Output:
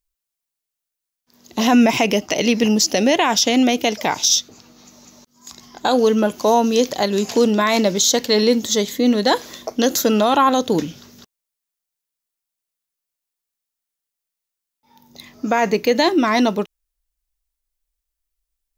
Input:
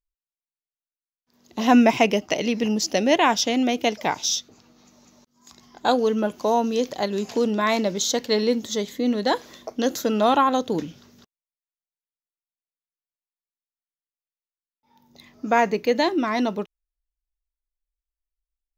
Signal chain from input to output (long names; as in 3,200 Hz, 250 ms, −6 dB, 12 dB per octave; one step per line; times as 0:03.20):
high-shelf EQ 4,500 Hz +7.5 dB
brickwall limiter −12 dBFS, peak gain reduction 7.5 dB
level +6.5 dB